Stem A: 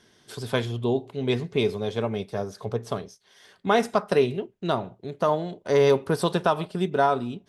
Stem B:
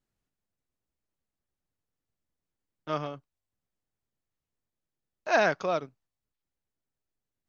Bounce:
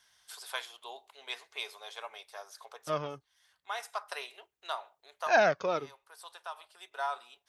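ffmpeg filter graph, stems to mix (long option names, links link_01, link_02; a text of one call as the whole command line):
ffmpeg -i stem1.wav -i stem2.wav -filter_complex "[0:a]highpass=frequency=800:width=0.5412,highpass=frequency=800:width=1.3066,highshelf=frequency=9000:gain=10.5,volume=-6.5dB[link_01];[1:a]flanger=delay=1.2:depth=1.3:regen=32:speed=0.76:shape=sinusoidal,highpass=47,volume=2dB,asplit=2[link_02][link_03];[link_03]apad=whole_len=330109[link_04];[link_01][link_04]sidechaincompress=threshold=-42dB:ratio=10:attack=29:release=1200[link_05];[link_05][link_02]amix=inputs=2:normalize=0" out.wav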